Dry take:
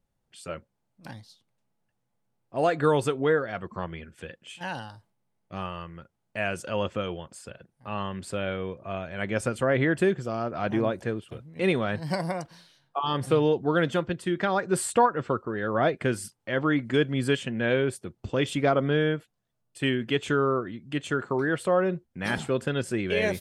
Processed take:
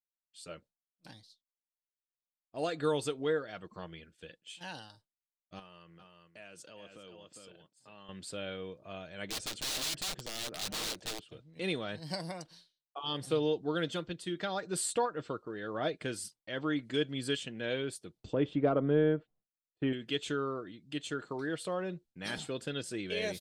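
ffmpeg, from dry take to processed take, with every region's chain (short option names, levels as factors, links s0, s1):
-filter_complex "[0:a]asettb=1/sr,asplit=3[s0][s1][s2];[s0]atrim=end=5.594[s3];[s1]atrim=start=5.59:end=8.09,asetpts=PTS-STARTPTS,afade=t=in:d=0.004:c=qsin,afade=t=out:st=2.496:d=0.004:c=qsin,highpass=110,aecho=1:1:404:0.376,atrim=end_sample=110250,acompressor=threshold=0.00708:ratio=2.5:attack=3.2:release=140:knee=1:detection=peak[s4];[s2]atrim=start=8.086[s5];[s3][s4]acrossfade=d=0.004:c1=hsin:c2=qsin[s6];[s6][s5]acrossfade=d=0.004:c1=qsin:c2=hsin,asettb=1/sr,asplit=3[s7][s8][s9];[s7]atrim=end=9.274[s10];[s8]atrim=start=9.27:end=11.54,asetpts=PTS-STARTPTS,afade=t=in:d=0.004:c=qsin,afade=t=out:st=2.266:d=0.004:c=qsin,lowpass=6900,aeval=exprs='(mod(18.8*val(0)+1,2)-1)/18.8':c=same[s11];[s9]atrim=start=11.536[s12];[s10][s11]acrossfade=d=0.004:c1=hsin:c2=qsin[s13];[s13][s12]acrossfade=d=0.004:c1=qsin:c2=hsin,asettb=1/sr,asplit=3[s14][s15][s16];[s14]atrim=end=18.334[s17];[s15]atrim=start=18.33:end=19.93,asetpts=PTS-STARTPTS,afade=t=in:d=0.004:c=qsin,afade=t=out:st=1.596:d=0.004:c=qsin,lowpass=1100,acontrast=59[s18];[s16]atrim=start=19.926[s19];[s17][s18]acrossfade=d=0.004:c1=hsin:c2=qsin[s20];[s20][s19]acrossfade=d=0.004:c1=qsin:c2=hsin,aecho=1:1:6.5:0.32,agate=range=0.0224:threshold=0.00562:ratio=3:detection=peak,equalizer=f=125:t=o:w=1:g=-6,equalizer=f=1000:t=o:w=1:g=-4,equalizer=f=2000:t=o:w=1:g=-3,equalizer=f=4000:t=o:w=1:g=9,equalizer=f=8000:t=o:w=1:g=4,volume=0.355"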